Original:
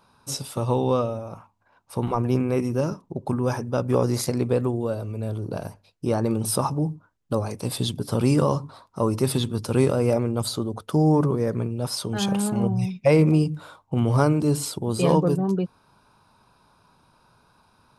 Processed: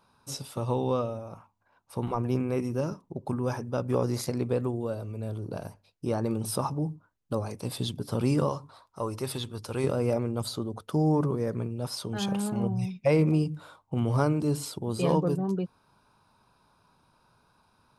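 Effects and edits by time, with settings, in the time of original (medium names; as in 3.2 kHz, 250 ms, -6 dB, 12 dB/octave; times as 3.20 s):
8.49–9.84 s: peaking EQ 200 Hz -8.5 dB 2 oct
whole clip: dynamic bell 8.8 kHz, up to -3 dB, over -46 dBFS, Q 1.1; trim -5.5 dB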